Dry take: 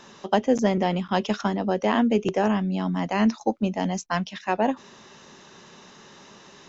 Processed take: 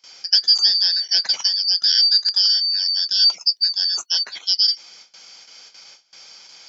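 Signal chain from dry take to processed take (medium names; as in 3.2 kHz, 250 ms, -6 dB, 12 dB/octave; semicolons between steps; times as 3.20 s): four frequency bands reordered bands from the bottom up 4321; high-pass 190 Hz 12 dB/octave; gate with hold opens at -38 dBFS; treble shelf 6.3 kHz +10 dB; trim +1.5 dB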